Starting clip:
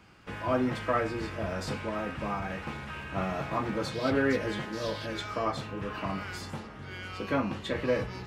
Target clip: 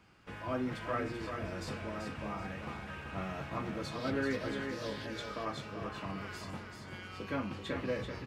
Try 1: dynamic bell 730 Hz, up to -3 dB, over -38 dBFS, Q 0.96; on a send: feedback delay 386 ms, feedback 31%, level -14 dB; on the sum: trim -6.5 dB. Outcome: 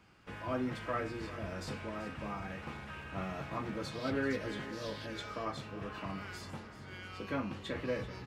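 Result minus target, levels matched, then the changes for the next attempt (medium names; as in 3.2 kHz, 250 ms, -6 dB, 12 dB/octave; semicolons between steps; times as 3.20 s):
echo-to-direct -8 dB
change: feedback delay 386 ms, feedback 31%, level -6 dB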